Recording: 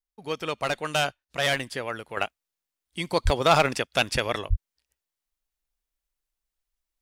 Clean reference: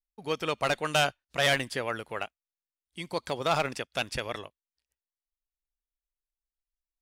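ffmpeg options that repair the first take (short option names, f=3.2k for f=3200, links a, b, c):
-filter_complex "[0:a]asplit=3[a][b][c];[a]afade=t=out:st=3.24:d=0.02[d];[b]highpass=f=140:w=0.5412,highpass=f=140:w=1.3066,afade=t=in:st=3.24:d=0.02,afade=t=out:st=3.36:d=0.02[e];[c]afade=t=in:st=3.36:d=0.02[f];[d][e][f]amix=inputs=3:normalize=0,asplit=3[g][h][i];[g]afade=t=out:st=4.49:d=0.02[j];[h]highpass=f=140:w=0.5412,highpass=f=140:w=1.3066,afade=t=in:st=4.49:d=0.02,afade=t=out:st=4.61:d=0.02[k];[i]afade=t=in:st=4.61:d=0.02[l];[j][k][l]amix=inputs=3:normalize=0,asetnsamples=n=441:p=0,asendcmd='2.17 volume volume -7.5dB',volume=0dB"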